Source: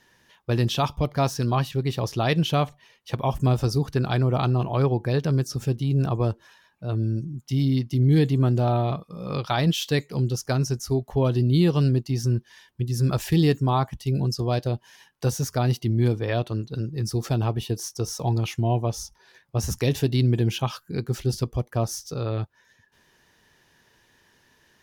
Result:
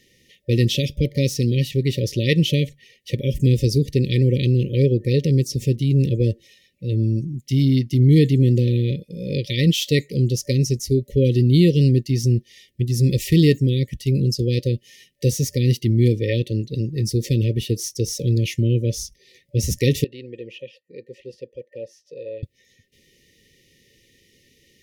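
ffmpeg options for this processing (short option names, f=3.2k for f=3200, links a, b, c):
-filter_complex "[0:a]asettb=1/sr,asplit=3[a][b][c];[a]atrim=end=20.044[d];[b]atrim=start=20.04:end=22.43,asetpts=PTS-STARTPTS,afade=t=in:d=0.004:c=qsin,afade=t=out:st=2.386:d=0.004:c=qsin,asplit=3[e][f][g];[e]bandpass=f=530:t=q:w=8,volume=0dB[h];[f]bandpass=f=1.84k:t=q:w=8,volume=-6dB[i];[g]bandpass=f=2.48k:t=q:w=8,volume=-9dB[j];[h][i][j]amix=inputs=3:normalize=0[k];[c]atrim=start=22.426[l];[d][k]acrossfade=d=0.004:c1=hsin:c2=qsin[m];[m][l]acrossfade=d=0.004:c1=qsin:c2=hsin,afftfilt=real='re*(1-between(b*sr/4096,580,1800))':imag='im*(1-between(b*sr/4096,580,1800))':win_size=4096:overlap=0.75,volume=5dB"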